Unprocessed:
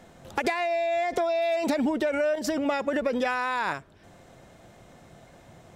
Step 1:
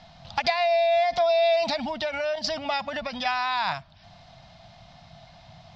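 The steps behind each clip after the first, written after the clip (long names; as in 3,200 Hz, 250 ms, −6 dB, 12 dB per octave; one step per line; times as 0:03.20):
drawn EQ curve 170 Hz 0 dB, 450 Hz −28 dB, 670 Hz +2 dB, 1,600 Hz −5 dB, 4,800 Hz +10 dB, 9,000 Hz −27 dB
level +3 dB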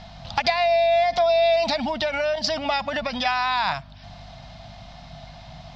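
in parallel at +1 dB: downward compressor, threshold −31 dBFS, peak gain reduction 12.5 dB
on the sum: mains hum 50 Hz, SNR 23 dB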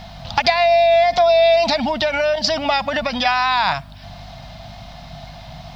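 tape wow and flutter 18 cents
bit reduction 11 bits
level +5.5 dB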